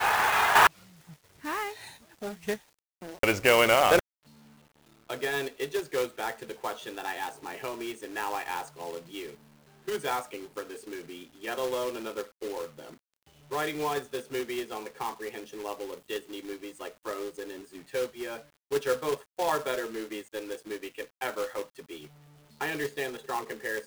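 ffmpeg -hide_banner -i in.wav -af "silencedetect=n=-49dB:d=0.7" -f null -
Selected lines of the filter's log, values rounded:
silence_start: 4.00
silence_end: 5.09 | silence_duration: 1.09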